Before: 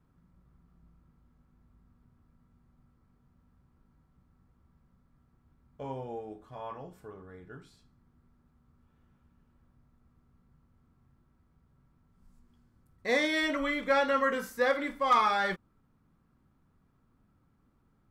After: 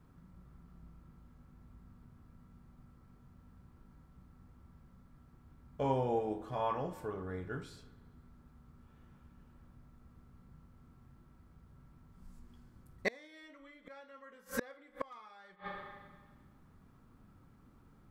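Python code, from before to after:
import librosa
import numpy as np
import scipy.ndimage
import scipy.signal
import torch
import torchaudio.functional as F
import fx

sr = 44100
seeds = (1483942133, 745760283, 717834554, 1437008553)

y = fx.rider(x, sr, range_db=10, speed_s=0.5)
y = fx.rev_spring(y, sr, rt60_s=1.4, pass_ms=(32, 43), chirp_ms=25, drr_db=13.5)
y = fx.gate_flip(y, sr, shuts_db=-27.0, range_db=-34)
y = y * librosa.db_to_amplitude(8.5)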